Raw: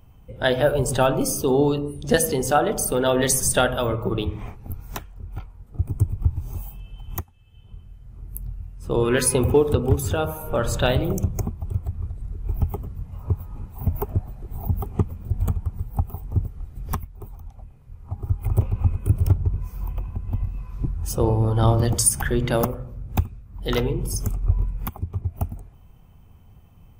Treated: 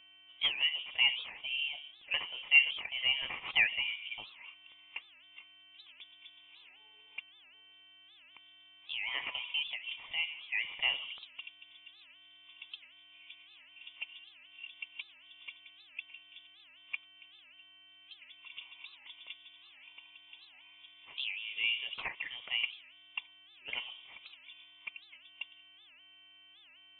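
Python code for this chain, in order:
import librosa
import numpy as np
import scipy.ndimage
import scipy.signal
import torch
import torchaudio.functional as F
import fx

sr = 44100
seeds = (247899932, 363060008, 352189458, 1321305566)

y = fx.tracing_dist(x, sr, depth_ms=0.27)
y = fx.vowel_filter(y, sr, vowel='a')
y = fx.peak_eq(y, sr, hz=1500.0, db=12.5, octaves=1.1)
y = fx.dmg_buzz(y, sr, base_hz=400.0, harmonics=38, level_db=-55.0, tilt_db=-8, odd_only=False)
y = fx.freq_invert(y, sr, carrier_hz=3500)
y = fx.record_warp(y, sr, rpm=78.0, depth_cents=250.0)
y = F.gain(torch.from_numpy(y), -5.0).numpy()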